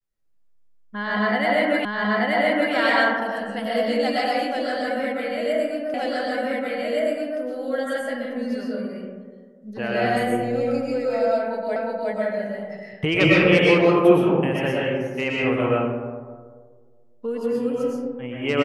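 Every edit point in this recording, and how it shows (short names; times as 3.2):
1.85 repeat of the last 0.88 s
5.94 repeat of the last 1.47 s
11.76 repeat of the last 0.36 s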